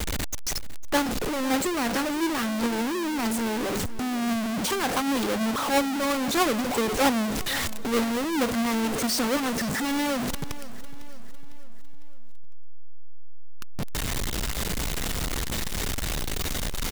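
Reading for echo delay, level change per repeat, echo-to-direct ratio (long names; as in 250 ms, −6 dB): 503 ms, −6.0 dB, −15.5 dB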